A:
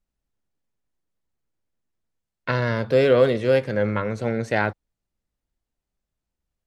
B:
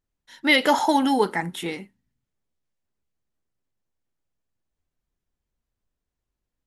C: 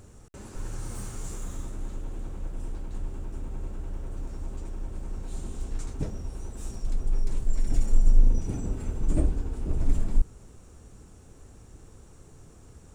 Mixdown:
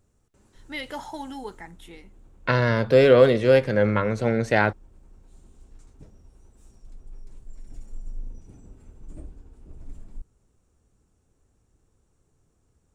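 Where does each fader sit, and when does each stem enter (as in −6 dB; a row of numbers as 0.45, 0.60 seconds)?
+2.0, −16.0, −17.0 decibels; 0.00, 0.25, 0.00 seconds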